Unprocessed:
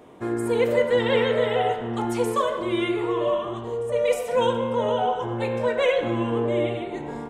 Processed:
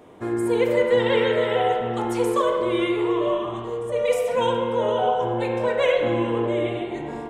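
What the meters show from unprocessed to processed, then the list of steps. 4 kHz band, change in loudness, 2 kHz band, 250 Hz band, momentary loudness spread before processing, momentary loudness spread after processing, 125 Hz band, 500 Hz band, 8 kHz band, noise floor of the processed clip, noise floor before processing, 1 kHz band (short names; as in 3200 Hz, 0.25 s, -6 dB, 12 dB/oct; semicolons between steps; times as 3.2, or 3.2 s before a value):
+0.5 dB, +1.5 dB, +1.0 dB, +1.5 dB, 6 LU, 7 LU, -0.5 dB, +1.5 dB, 0.0 dB, -32 dBFS, -34 dBFS, +1.5 dB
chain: spring tank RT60 1.7 s, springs 40/50 ms, chirp 35 ms, DRR 5.5 dB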